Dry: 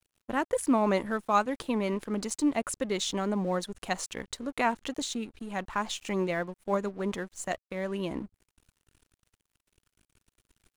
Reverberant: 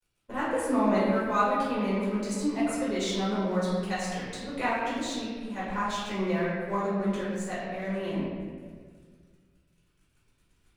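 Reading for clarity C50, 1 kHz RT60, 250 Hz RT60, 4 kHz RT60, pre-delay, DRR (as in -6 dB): -1.5 dB, 1.5 s, 2.1 s, 1.1 s, 4 ms, -10.5 dB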